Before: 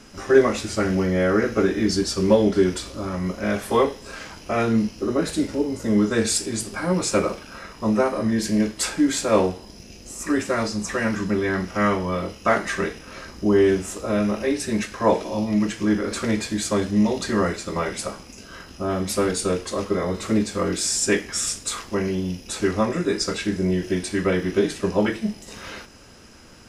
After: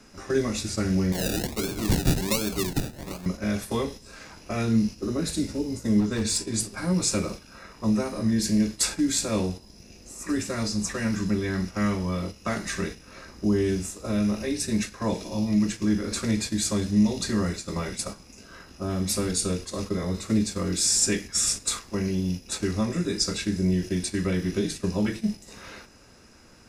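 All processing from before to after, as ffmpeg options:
-filter_complex "[0:a]asettb=1/sr,asplit=3[a][b][c];[a]atrim=end=1.124[d];[b]atrim=start=1.12:end=3.26,asetpts=PTS-STARTPTS,afade=t=in:d=0.004:c=qsin,afade=t=out:st=2.136:d=0.004:c=qsin,aemphasis=mode=production:type=riaa,acrusher=samples=32:mix=1:aa=0.000001:lfo=1:lforange=19.2:lforate=1.3[e];[c]atrim=start=3.256[f];[d][e]acrossfade=d=0.004:c1=hsin:c2=qsin[g];[g][f]acrossfade=d=0.004:c1=qsin:c2=hsin,asettb=1/sr,asplit=3[h][i][j];[h]atrim=end=6.004[k];[i]atrim=start=6:end=6.54,asetpts=PTS-STARTPTS,afade=t=in:d=0.004:c=qsin,afade=t=out:st=0.536:d=0.004:c=qsin,highshelf=f=6k:g=-8.5,asoftclip=type=hard:threshold=-18dB,aeval=exprs='val(0)+0.00251*sin(2*PI*1000*n/s)':c=same[l];[j]atrim=start=6.536[m];[k][l]acrossfade=d=0.004:c1=hsin:c2=qsin[n];[n][m]acrossfade=d=0.004:c1=qsin:c2=hsin,agate=range=-7dB:threshold=-30dB:ratio=16:detection=peak,bandreject=f=3.1k:w=9.1,acrossover=split=240|3000[o][p][q];[p]acompressor=threshold=-43dB:ratio=2[r];[o][r][q]amix=inputs=3:normalize=0,volume=1.5dB"

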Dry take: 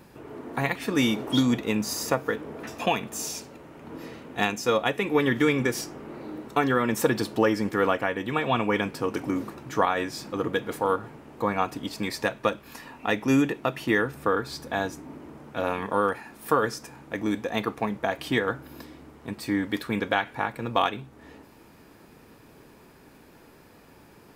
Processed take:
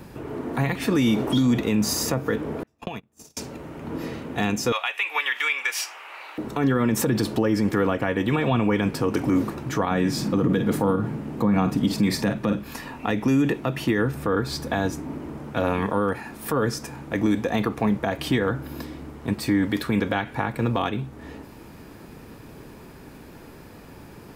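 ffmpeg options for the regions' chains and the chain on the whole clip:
-filter_complex "[0:a]asettb=1/sr,asplit=3[a][b][c];[a]atrim=end=2.634[d];[b]atrim=start=2.63:end=3.37,asetpts=PTS-STARTPTS,afade=t=in:d=0.004:c=qsin,afade=t=out:st=0.736:d=0.004:c=qsin,agate=range=-40dB:threshold=-30dB:ratio=16:release=100:detection=peak,lowshelf=f=170:g=7.5,acompressor=threshold=-35dB:ratio=20:attack=3.2:release=140:knee=1:detection=peak[e];[c]atrim=start=3.366[f];[d][e]acrossfade=d=0.004:c1=hsin:c2=qsin[g];[g][f]acrossfade=d=0.004:c1=qsin:c2=hsin,asettb=1/sr,asplit=3[h][i][j];[h]atrim=end=4.724[k];[i]atrim=start=4.72:end=6.38,asetpts=PTS-STARTPTS,afade=t=in:d=0.004:c=qsin,afade=t=out:st=1.656:d=0.004:c=qsin,highpass=f=840:w=0.5412,highpass=f=840:w=1.3066,equalizer=f=2.6k:t=o:w=0.77:g=11.5[l];[j]atrim=start=6.376[m];[k][l]acrossfade=d=0.004:c1=hsin:c2=qsin[n];[n][m]acrossfade=d=0.004:c1=qsin:c2=hsin,asettb=1/sr,asplit=3[o][p][q];[o]atrim=end=9.914[r];[p]atrim=start=9.91:end=12.64,asetpts=PTS-STARTPTS,afade=t=in:d=0.004:c=qsin,afade=t=out:st=2.726:d=0.004:c=qsin,equalizer=f=190:t=o:w=1.2:g=9.5,asplit=2[s][t];[t]adelay=49,volume=-12.5dB[u];[s][u]amix=inputs=2:normalize=0,atrim=end_sample=120393[v];[q]atrim=start=12.636[w];[r][v]acrossfade=d=0.004:c1=hsin:c2=qsin[x];[x][w]acrossfade=d=0.004:c1=qsin:c2=hsin,lowshelf=f=230:g=7,acrossover=split=380[y][z];[z]acompressor=threshold=-27dB:ratio=4[aa];[y][aa]amix=inputs=2:normalize=0,alimiter=limit=-18.5dB:level=0:latency=1:release=38,volume=6dB"

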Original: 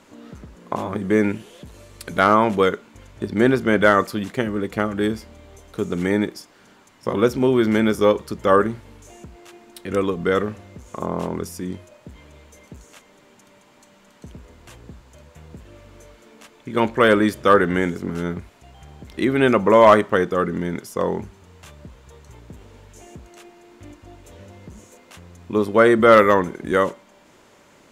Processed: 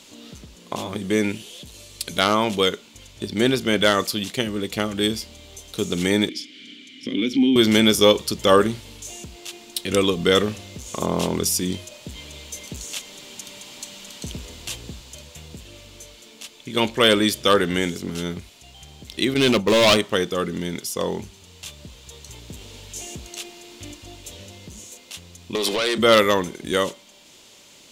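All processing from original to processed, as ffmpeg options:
-filter_complex "[0:a]asettb=1/sr,asplit=3[a][b][c];[a]atrim=end=6.294[d];[b]atrim=start=6.29:end=7.56,asetpts=PTS-STARTPTS,afade=t=in:d=0.004:c=qsin,afade=t=out:st=1.266:d=0.004:c=qsin,acompressor=threshold=-31dB:ratio=2:attack=3.2:release=140:knee=1:detection=peak,asplit=3[e][f][g];[e]bandpass=f=270:t=q:w=8,volume=0dB[h];[f]bandpass=f=2.29k:t=q:w=8,volume=-6dB[i];[g]bandpass=f=3.01k:t=q:w=8,volume=-9dB[j];[h][i][j]amix=inputs=3:normalize=0,aeval=exprs='0.282*sin(PI/2*3.98*val(0)/0.282)':c=same[k];[c]atrim=start=7.556[l];[d][k]acrossfade=d=0.004:c1=hsin:c2=qsin[m];[m][l]acrossfade=d=0.004:c1=qsin:c2=hsin,asettb=1/sr,asplit=3[n][o][p];[n]atrim=end=19.344[q];[o]atrim=start=19.34:end=19.97,asetpts=PTS-STARTPTS,afade=t=in:d=0.004:c=qsin,afade=t=out:st=0.626:d=0.004:c=qsin,lowshelf=f=430:g=5.5,agate=range=-33dB:threshold=-15dB:ratio=3:release=100:detection=peak,asoftclip=type=hard:threshold=-10dB[r];[p]atrim=start=19.966[s];[q][r]acrossfade=d=0.004:c1=hsin:c2=qsin[t];[t][s]acrossfade=d=0.004:c1=qsin:c2=hsin,asettb=1/sr,asplit=3[u][v][w];[u]atrim=end=25.554[x];[v]atrim=start=25.55:end=25.98,asetpts=PTS-STARTPTS,afade=t=in:d=0.004:c=qsin,afade=t=out:st=0.426:d=0.004:c=qsin,highpass=170,acompressor=threshold=-25dB:ratio=20:attack=3.2:release=140:knee=1:detection=peak,asplit=2[y][z];[z]highpass=f=720:p=1,volume=24dB,asoftclip=type=tanh:threshold=-11.5dB[aa];[y][aa]amix=inputs=2:normalize=0,lowpass=f=7.2k:p=1,volume=-6dB[ab];[w]atrim=start=25.976[ac];[x][ab]acrossfade=d=0.004:c1=hsin:c2=qsin[ad];[ad][ac]acrossfade=d=0.004:c1=qsin:c2=hsin,highshelf=f=2.3k:t=q:w=1.5:g=12,dynaudnorm=f=410:g=11:m=11dB,volume=-1dB"

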